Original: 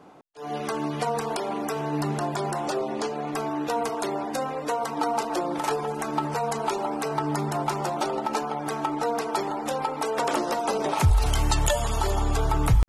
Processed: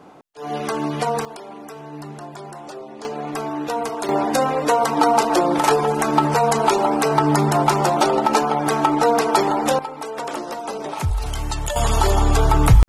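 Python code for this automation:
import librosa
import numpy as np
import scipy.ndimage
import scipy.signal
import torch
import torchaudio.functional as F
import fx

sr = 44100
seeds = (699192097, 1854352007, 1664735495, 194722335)

y = fx.gain(x, sr, db=fx.steps((0.0, 5.0), (1.25, -7.5), (3.05, 2.5), (4.09, 10.0), (9.79, -2.5), (11.76, 8.0)))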